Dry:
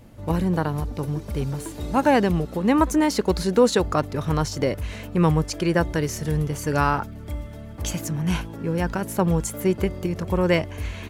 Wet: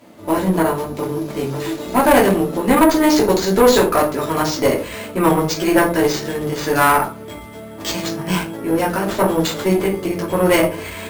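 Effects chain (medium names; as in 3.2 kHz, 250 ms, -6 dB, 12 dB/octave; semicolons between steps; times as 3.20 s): high-pass 290 Hz 12 dB/octave; simulated room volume 180 m³, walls furnished, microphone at 2.9 m; careless resampling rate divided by 4×, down none, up hold; valve stage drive 11 dB, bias 0.6; trim +5.5 dB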